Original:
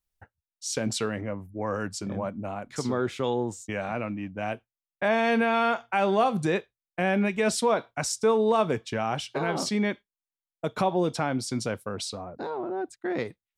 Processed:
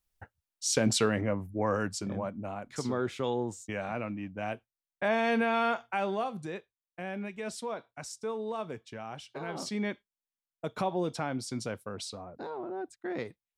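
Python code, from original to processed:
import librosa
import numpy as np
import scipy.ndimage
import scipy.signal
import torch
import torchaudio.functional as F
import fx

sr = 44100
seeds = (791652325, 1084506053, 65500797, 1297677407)

y = fx.gain(x, sr, db=fx.line((1.5, 2.5), (2.29, -4.0), (5.82, -4.0), (6.43, -13.0), (9.17, -13.0), (9.88, -6.0)))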